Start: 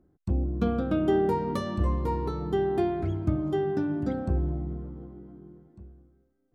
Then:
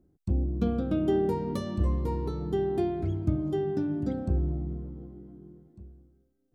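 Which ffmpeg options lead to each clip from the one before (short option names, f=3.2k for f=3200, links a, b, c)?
-af "equalizer=f=1.3k:w=0.62:g=-8"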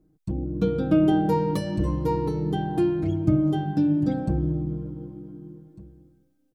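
-af "aecho=1:1:6.4:0.89,dynaudnorm=f=360:g=3:m=4dB"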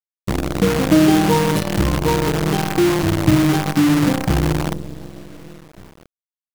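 -af "acrusher=bits=5:dc=4:mix=0:aa=0.000001,volume=6.5dB"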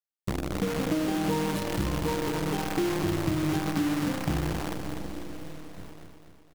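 -filter_complex "[0:a]acompressor=threshold=-21dB:ratio=6,asplit=2[a][b];[b]aecho=0:1:248|496|744|992|1240|1488|1736:0.473|0.256|0.138|0.0745|0.0402|0.0217|0.0117[c];[a][c]amix=inputs=2:normalize=0,volume=-4.5dB"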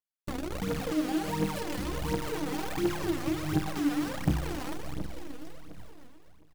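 -filter_complex "[0:a]asplit=2[a][b];[b]acrusher=bits=4:mix=0:aa=0.000001,volume=-11.5dB[c];[a][c]amix=inputs=2:normalize=0,aphaser=in_gain=1:out_gain=1:delay=4.2:decay=0.67:speed=1.4:type=triangular,volume=-8dB"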